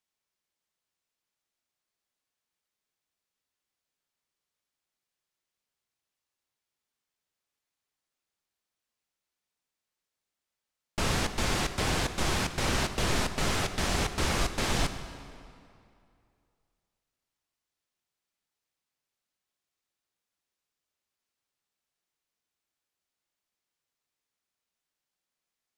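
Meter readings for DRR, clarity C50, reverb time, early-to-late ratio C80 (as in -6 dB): 8.5 dB, 10.0 dB, 2.4 s, 11.0 dB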